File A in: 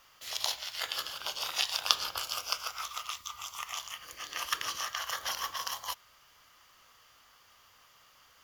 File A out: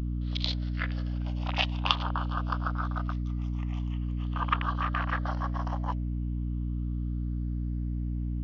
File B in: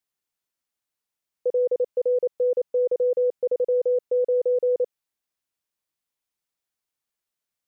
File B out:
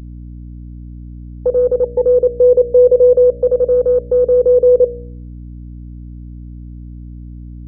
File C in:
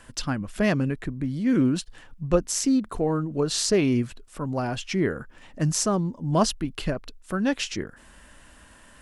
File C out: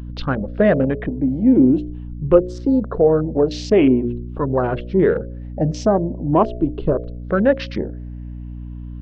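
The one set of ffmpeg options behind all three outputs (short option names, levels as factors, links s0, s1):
-filter_complex "[0:a]afftfilt=real='re*pow(10,8/40*sin(2*PI*(0.64*log(max(b,1)*sr/1024/100)/log(2)-(0.44)*(pts-256)/sr)))':imag='im*pow(10,8/40*sin(2*PI*(0.64*log(max(b,1)*sr/1024/100)/log(2)-(0.44)*(pts-256)/sr)))':win_size=1024:overlap=0.75,afwtdn=0.02,lowpass=f=4000:w=0.5412,lowpass=f=4000:w=1.3066,equalizer=f=490:t=o:w=1.7:g=11.5,bandreject=f=60.14:t=h:w=4,bandreject=f=120.28:t=h:w=4,bandreject=f=180.42:t=h:w=4,bandreject=f=240.56:t=h:w=4,bandreject=f=300.7:t=h:w=4,bandreject=f=360.84:t=h:w=4,bandreject=f=420.98:t=h:w=4,bandreject=f=481.12:t=h:w=4,bandreject=f=541.26:t=h:w=4,bandreject=f=601.4:t=h:w=4,bandreject=f=661.54:t=h:w=4,aeval=exprs='val(0)+0.0251*(sin(2*PI*60*n/s)+sin(2*PI*2*60*n/s)/2+sin(2*PI*3*60*n/s)/3+sin(2*PI*4*60*n/s)/4+sin(2*PI*5*60*n/s)/5)':c=same,asplit=2[s0][s1];[s1]alimiter=limit=0.316:level=0:latency=1:release=158,volume=1.19[s2];[s0][s2]amix=inputs=2:normalize=0,aeval=exprs='1.68*(cos(1*acos(clip(val(0)/1.68,-1,1)))-cos(1*PI/2))+0.015*(cos(2*acos(clip(val(0)/1.68,-1,1)))-cos(2*PI/2))':c=same,volume=0.596"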